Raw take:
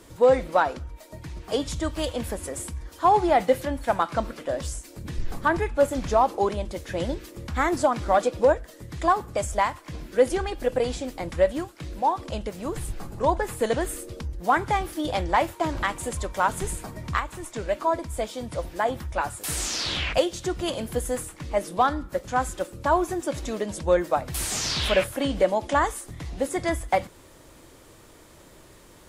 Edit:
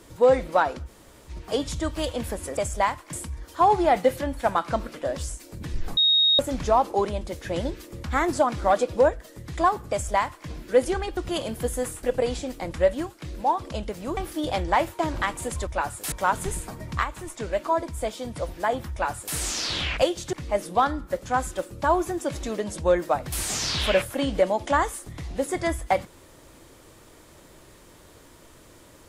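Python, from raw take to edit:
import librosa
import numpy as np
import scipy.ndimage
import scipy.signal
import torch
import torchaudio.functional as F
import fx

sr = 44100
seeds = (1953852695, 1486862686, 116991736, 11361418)

y = fx.edit(x, sr, fx.room_tone_fill(start_s=0.87, length_s=0.42, crossfade_s=0.04),
    fx.bleep(start_s=5.41, length_s=0.42, hz=3750.0, db=-16.0),
    fx.duplicate(start_s=9.35, length_s=0.56, to_s=2.57),
    fx.cut(start_s=12.75, length_s=2.03),
    fx.duplicate(start_s=19.07, length_s=0.45, to_s=16.28),
    fx.move(start_s=20.49, length_s=0.86, to_s=10.61), tone=tone)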